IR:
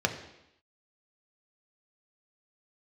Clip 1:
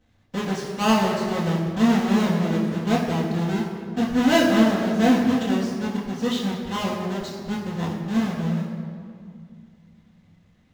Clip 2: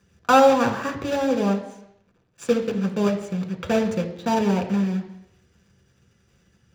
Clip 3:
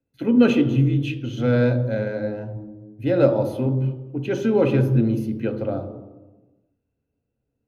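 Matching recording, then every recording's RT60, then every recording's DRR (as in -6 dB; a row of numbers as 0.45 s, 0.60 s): 2; 2.2 s, 0.85 s, 1.2 s; -8.5 dB, 3.5 dB, 7.0 dB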